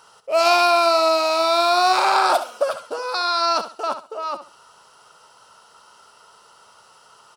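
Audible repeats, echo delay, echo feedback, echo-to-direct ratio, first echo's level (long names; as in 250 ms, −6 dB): 2, 68 ms, 24%, −10.5 dB, −11.0 dB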